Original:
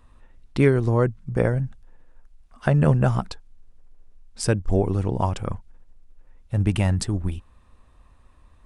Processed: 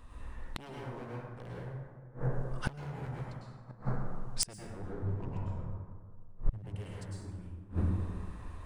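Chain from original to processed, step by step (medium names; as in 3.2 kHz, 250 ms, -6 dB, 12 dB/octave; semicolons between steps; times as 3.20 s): wavefolder -16.5 dBFS; 4.76–6.58 s: tilt EQ -2.5 dB/octave; plate-style reverb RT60 1.8 s, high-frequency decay 0.4×, pre-delay 90 ms, DRR -6.5 dB; inverted gate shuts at -18 dBFS, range -28 dB; trim +1.5 dB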